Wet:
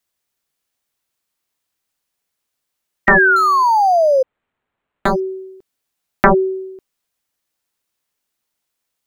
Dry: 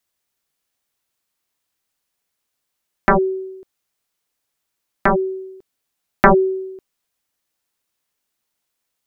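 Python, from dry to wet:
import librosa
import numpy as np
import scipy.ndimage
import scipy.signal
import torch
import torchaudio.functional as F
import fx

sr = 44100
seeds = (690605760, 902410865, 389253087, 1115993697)

y = fx.spec_paint(x, sr, seeds[0], shape='fall', start_s=3.07, length_s=1.16, low_hz=510.0, high_hz=1900.0, level_db=-12.0)
y = fx.resample_linear(y, sr, factor=8, at=(3.36, 5.2))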